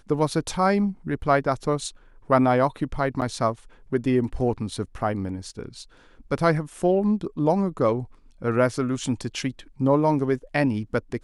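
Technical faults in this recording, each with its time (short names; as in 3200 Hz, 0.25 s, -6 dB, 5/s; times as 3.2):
3.21–3.22 gap 8.2 ms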